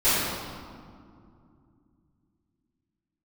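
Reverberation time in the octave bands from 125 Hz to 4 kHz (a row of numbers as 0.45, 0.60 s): 3.9, 3.6, 2.5, 2.3, 1.5, 1.2 s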